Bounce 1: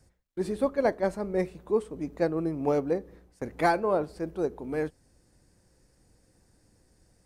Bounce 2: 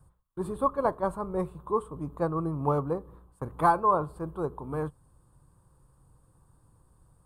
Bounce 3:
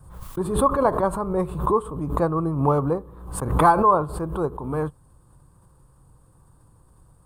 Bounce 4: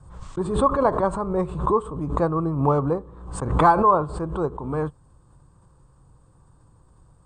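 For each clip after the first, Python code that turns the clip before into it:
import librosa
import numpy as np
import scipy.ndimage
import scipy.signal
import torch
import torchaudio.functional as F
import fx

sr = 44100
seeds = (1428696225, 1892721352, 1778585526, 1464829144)

y1 = fx.curve_eq(x, sr, hz=(100.0, 140.0, 210.0, 720.0, 1100.0, 2000.0, 3400.0, 5700.0, 8700.0), db=(0, 5, -8, -6, 10, -20, -9, -23, -4))
y1 = y1 * 10.0 ** (3.5 / 20.0)
y2 = fx.pre_swell(y1, sr, db_per_s=68.0)
y2 = y2 * 10.0 ** (6.0 / 20.0)
y3 = scipy.signal.sosfilt(scipy.signal.butter(16, 8600.0, 'lowpass', fs=sr, output='sos'), y2)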